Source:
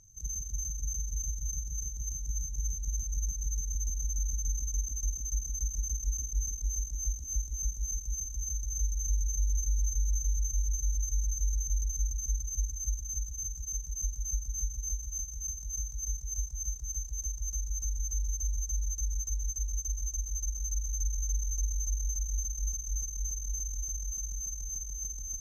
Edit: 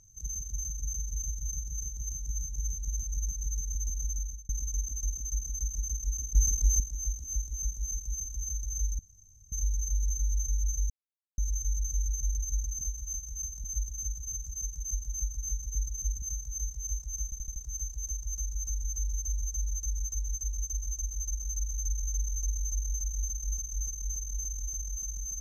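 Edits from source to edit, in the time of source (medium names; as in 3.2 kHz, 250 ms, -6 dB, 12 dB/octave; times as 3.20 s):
4.12–4.49 s: fade out
6.35–6.80 s: gain +8 dB
8.99 s: insert room tone 0.53 s
10.37–10.85 s: mute
12.28–12.75 s: swap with 14.86–15.69 s
16.71 s: stutter 0.08 s, 5 plays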